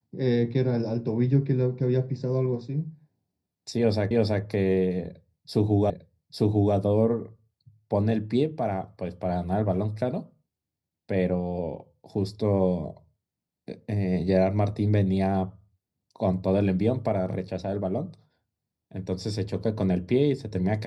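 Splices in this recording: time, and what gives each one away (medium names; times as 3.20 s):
4.11 s: repeat of the last 0.33 s
5.90 s: repeat of the last 0.85 s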